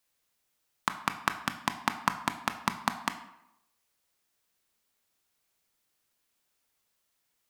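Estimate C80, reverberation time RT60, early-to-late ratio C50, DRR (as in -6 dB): 14.0 dB, 0.80 s, 12.0 dB, 8.0 dB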